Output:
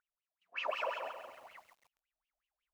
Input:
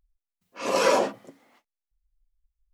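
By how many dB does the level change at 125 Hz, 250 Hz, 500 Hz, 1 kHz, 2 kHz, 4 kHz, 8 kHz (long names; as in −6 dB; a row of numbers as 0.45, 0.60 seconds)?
below −30 dB, −33.0 dB, −17.5 dB, −13.0 dB, −9.5 dB, −12.5 dB, −30.0 dB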